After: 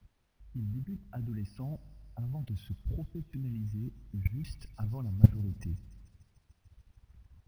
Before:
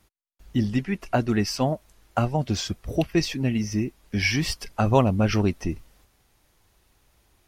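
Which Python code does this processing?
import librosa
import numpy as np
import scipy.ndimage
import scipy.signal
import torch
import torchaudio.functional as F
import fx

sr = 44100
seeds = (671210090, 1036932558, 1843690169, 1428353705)

y = fx.envelope_sharpen(x, sr, power=1.5)
y = scipy.signal.sosfilt(scipy.signal.butter(2, 68.0, 'highpass', fs=sr, output='sos'), y)
y = fx.peak_eq(y, sr, hz=490.0, db=-14.5, octaves=2.0)
y = fx.level_steps(y, sr, step_db=23)
y = fx.filter_lfo_lowpass(y, sr, shape='saw_down', hz=0.9, low_hz=530.0, high_hz=7700.0, q=0.94)
y = fx.mod_noise(y, sr, seeds[0], snr_db=18)
y = fx.quant_dither(y, sr, seeds[1], bits=12, dither='triangular')
y = fx.riaa(y, sr, side='playback')
y = fx.echo_wet_highpass(y, sr, ms=147, feedback_pct=80, hz=4300.0, wet_db=-13)
y = fx.rev_spring(y, sr, rt60_s=1.5, pass_ms=(40, 45), chirp_ms=70, drr_db=18.5)
y = np.repeat(scipy.signal.resample_poly(y, 1, 3), 3)[:len(y)]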